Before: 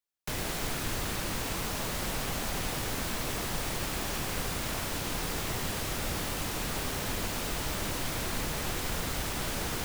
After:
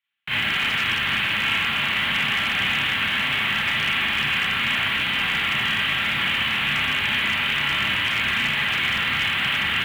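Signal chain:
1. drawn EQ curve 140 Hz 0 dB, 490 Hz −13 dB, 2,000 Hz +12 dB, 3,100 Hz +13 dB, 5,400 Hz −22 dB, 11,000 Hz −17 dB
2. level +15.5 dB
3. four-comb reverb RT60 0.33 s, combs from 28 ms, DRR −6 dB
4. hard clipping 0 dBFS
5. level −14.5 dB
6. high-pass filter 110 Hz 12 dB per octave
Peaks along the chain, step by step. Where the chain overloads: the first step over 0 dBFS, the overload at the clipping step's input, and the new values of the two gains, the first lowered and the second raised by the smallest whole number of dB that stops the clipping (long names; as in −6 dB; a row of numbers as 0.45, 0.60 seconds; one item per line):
−16.0, −0.5, +6.0, 0.0, −14.5, −11.5 dBFS
step 3, 6.0 dB
step 2 +9.5 dB, step 5 −8.5 dB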